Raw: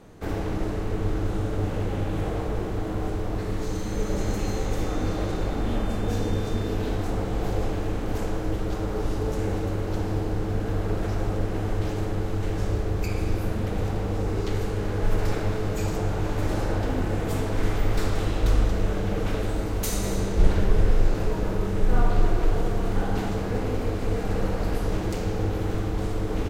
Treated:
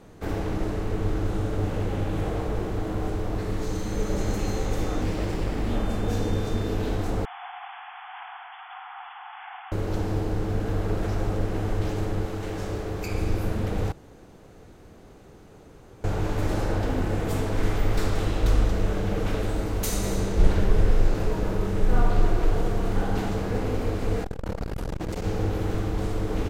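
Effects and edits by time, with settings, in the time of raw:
5.01–5.71 minimum comb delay 0.38 ms
7.25–9.72 brick-wall FIR band-pass 700–3500 Hz
12.25–13.12 low shelf 130 Hz -9.5 dB
13.92–16.04 room tone
24.24–25.24 core saturation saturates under 200 Hz

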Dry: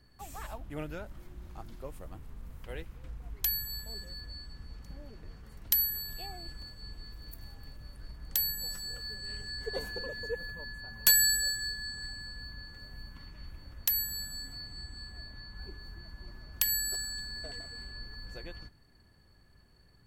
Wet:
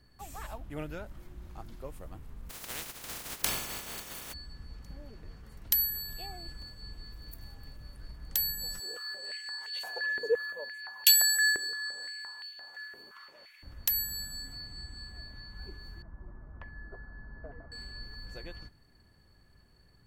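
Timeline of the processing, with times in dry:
2.49–4.32 spectral contrast lowered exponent 0.17
8.8–13.63 stepped high-pass 5.8 Hz 400–2900 Hz
16.02–17.72 LPF 1400 Hz 24 dB/oct

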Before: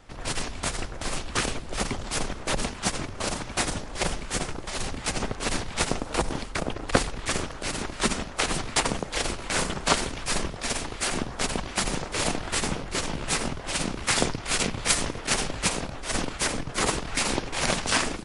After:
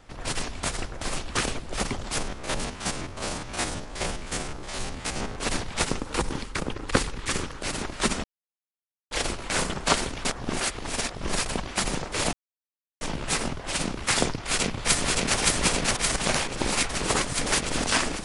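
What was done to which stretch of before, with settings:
2.18–5.36 stepped spectrum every 50 ms
5.86–7.62 bell 670 Hz -9 dB 0.36 oct
8.24–9.11 mute
10.25–11.46 reverse
12.33–13.01 mute
14.3–15.39 echo throw 0.57 s, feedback 70%, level -0.5 dB
16.16–17.84 reverse

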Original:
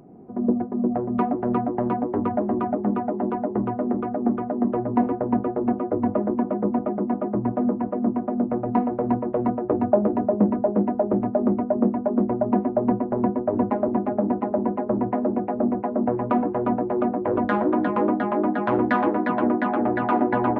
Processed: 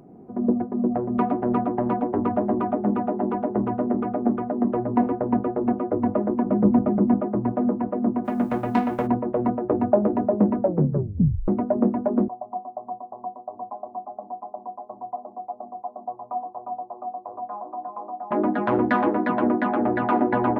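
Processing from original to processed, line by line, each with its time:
1.04–4.32 echo 0.111 s -10 dB
6.46–7.21 tone controls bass +11 dB, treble -1 dB
8.24–9.06 spectral whitening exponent 0.6
10.6 tape stop 0.88 s
12.28–18.31 vocal tract filter a

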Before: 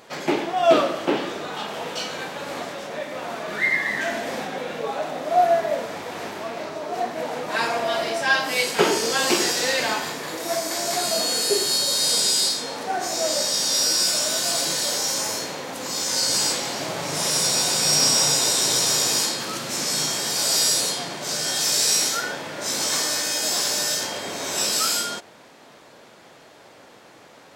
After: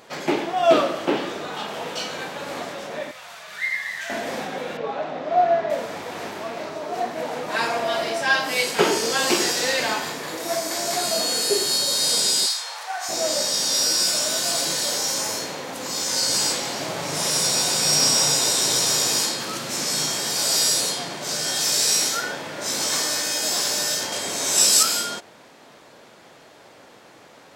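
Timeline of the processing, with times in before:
3.11–4.1 passive tone stack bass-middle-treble 10-0-10
4.77–5.7 air absorption 160 m
12.46–13.09 HPF 800 Hz 24 dB/oct
24.12–24.83 bell 8800 Hz +9.5 dB 1.8 oct

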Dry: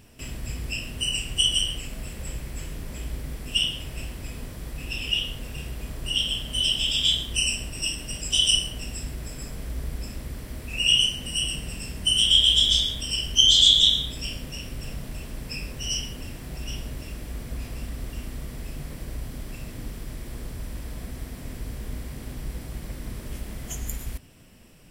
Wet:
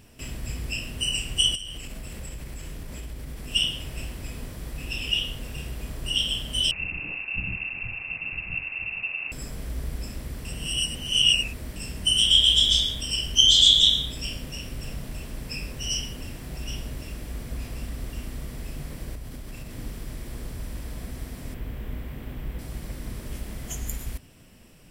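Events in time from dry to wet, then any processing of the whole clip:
1.55–3.52 compressor 8:1, threshold -32 dBFS
6.71–9.32 inverted band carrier 2700 Hz
10.45–11.76 reverse
19.15–19.77 compressor, threshold -33 dBFS
21.54–22.59 band shelf 7000 Hz -11.5 dB

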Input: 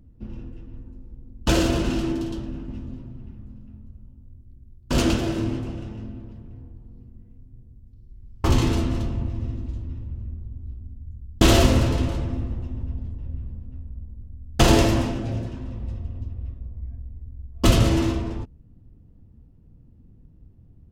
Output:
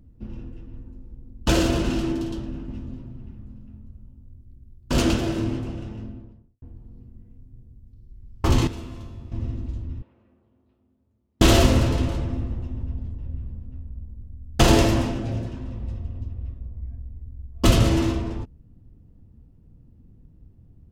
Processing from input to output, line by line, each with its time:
5.97–6.62 studio fade out
8.67–9.32 resonator 95 Hz, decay 1.2 s, mix 80%
10.02–11.4 BPF 530–3100 Hz

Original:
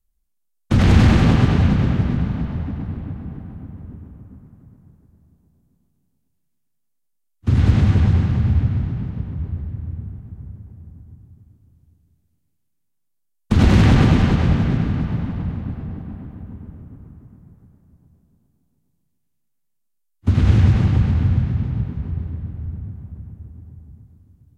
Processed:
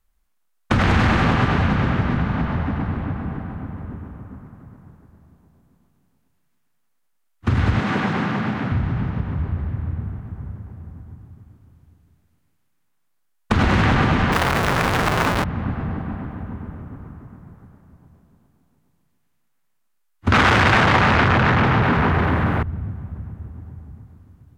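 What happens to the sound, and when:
7.8–8.72 HPF 170 Hz 24 dB/oct
14.32–15.44 infinite clipping
20.32–22.63 overdrive pedal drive 34 dB, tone 5100 Hz, clips at -4 dBFS
whole clip: bell 1300 Hz +13 dB 2.7 oct; compressor 2.5:1, threshold -21 dBFS; gain +2.5 dB

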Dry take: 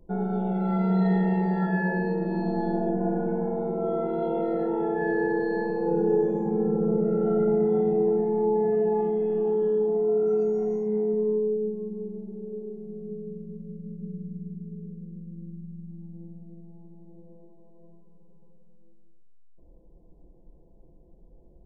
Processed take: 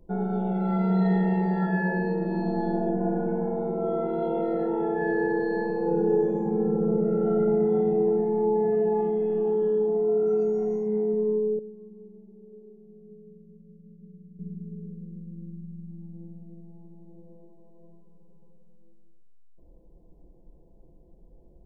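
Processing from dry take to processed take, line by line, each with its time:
11.59–14.39 gain -12 dB

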